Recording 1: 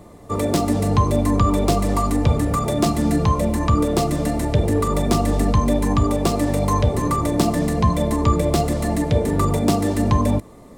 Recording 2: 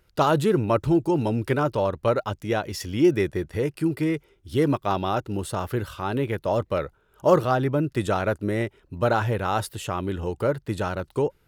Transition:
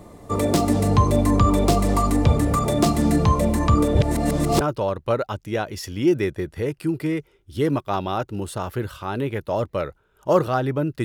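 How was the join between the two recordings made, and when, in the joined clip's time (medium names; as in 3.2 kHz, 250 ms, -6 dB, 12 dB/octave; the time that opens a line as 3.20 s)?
recording 1
3.95–4.61 s: reverse
4.61 s: go over to recording 2 from 1.58 s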